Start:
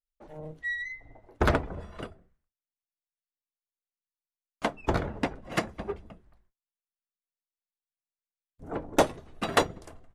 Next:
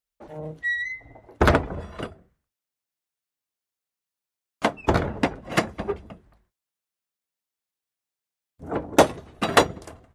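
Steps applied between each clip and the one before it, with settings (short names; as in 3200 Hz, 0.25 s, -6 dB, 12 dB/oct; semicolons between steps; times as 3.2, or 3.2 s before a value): HPF 53 Hz; gain +6.5 dB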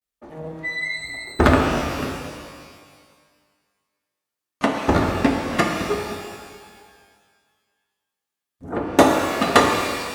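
vibrato 0.36 Hz 60 cents; small resonant body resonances 250/1200/1800 Hz, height 7 dB; shimmer reverb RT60 1.8 s, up +12 st, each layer -8 dB, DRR 1 dB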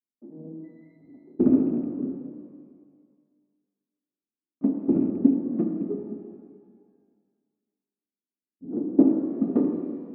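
rattling part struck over -22 dBFS, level -9 dBFS; Butterworth band-pass 260 Hz, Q 1.7; gain +1.5 dB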